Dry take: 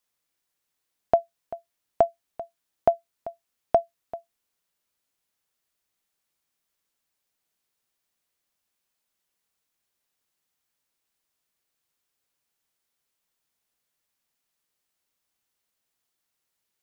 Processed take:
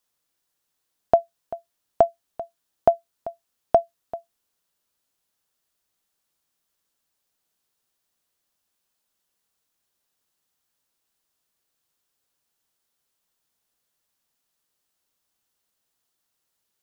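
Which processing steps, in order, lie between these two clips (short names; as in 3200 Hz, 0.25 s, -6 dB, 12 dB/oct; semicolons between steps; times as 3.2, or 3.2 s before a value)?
bell 2200 Hz -4.5 dB 0.5 oct; gain +3 dB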